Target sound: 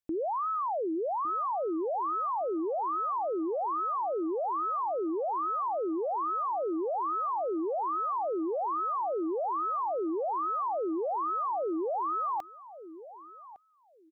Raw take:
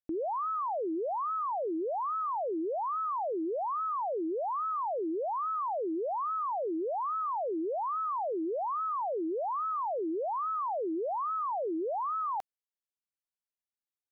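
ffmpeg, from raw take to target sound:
-filter_complex "[0:a]asplit=2[a][b];[b]adelay=1158,lowpass=f=880:p=1,volume=-14dB,asplit=2[c][d];[d]adelay=1158,lowpass=f=880:p=1,volume=0.2[e];[a][c][e]amix=inputs=3:normalize=0,volume=1.5dB"

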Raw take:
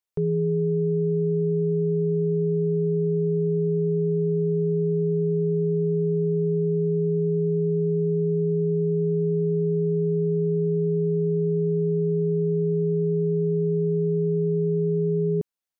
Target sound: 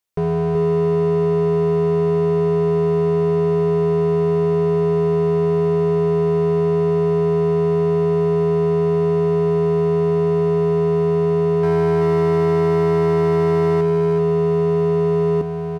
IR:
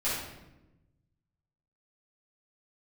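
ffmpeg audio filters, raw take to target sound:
-filter_complex "[0:a]asettb=1/sr,asplit=3[a][b][c];[a]atrim=end=11.634[d];[b]atrim=start=11.63:end=13.81,asetpts=PTS-STARTPTS,afade=t=in:d=0.004:c=qsin,afade=t=out:st=2.176:d=0.004:c=qsin,acontrast=30[e];[c]atrim=start=13.806[f];[d][e]acrossfade=d=0.004:c1=hsin:c2=qsin[g];[g][f]acrossfade=d=0.004:c1=qsin:c2=hsin,volume=23.5dB,asoftclip=hard,volume=-23.5dB,aecho=1:1:378:0.531,volume=7dB"

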